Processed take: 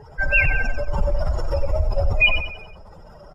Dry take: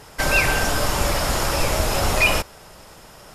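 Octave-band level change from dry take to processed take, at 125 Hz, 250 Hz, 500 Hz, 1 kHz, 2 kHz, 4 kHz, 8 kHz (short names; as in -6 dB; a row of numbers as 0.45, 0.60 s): +1.0 dB, -9.0 dB, -2.5 dB, -10.0 dB, +1.0 dB, -5.0 dB, under -25 dB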